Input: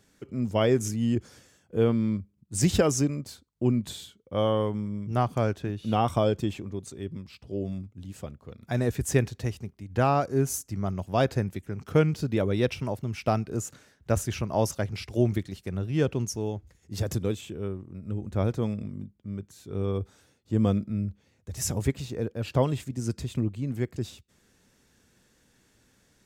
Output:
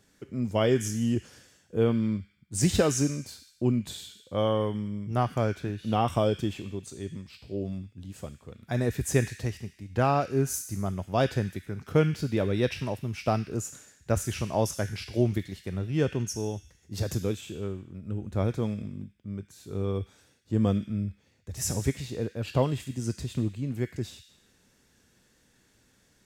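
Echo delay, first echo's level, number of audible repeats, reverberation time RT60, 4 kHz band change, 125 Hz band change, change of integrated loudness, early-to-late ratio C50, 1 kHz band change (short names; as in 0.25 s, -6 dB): none, none, none, 0.85 s, +0.5 dB, -1.0 dB, -1.0 dB, 11.0 dB, -1.0 dB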